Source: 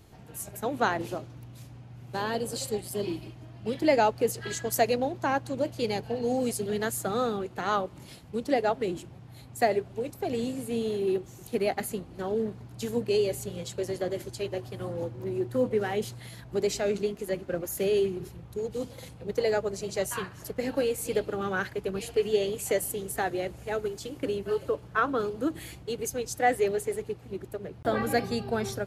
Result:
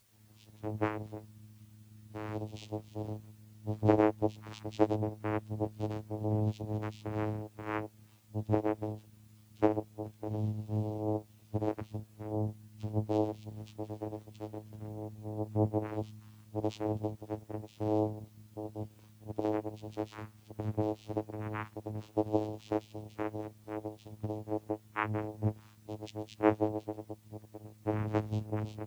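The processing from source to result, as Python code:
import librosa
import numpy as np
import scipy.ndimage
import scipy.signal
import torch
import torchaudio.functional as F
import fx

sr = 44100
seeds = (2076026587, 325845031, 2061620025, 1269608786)

y = fx.tilt_shelf(x, sr, db=-7.0, hz=1100.0)
y = fx.vocoder(y, sr, bands=4, carrier='saw', carrier_hz=107.0)
y = fx.dmg_noise_colour(y, sr, seeds[0], colour='white', level_db=-50.0)
y = fx.spectral_expand(y, sr, expansion=1.5)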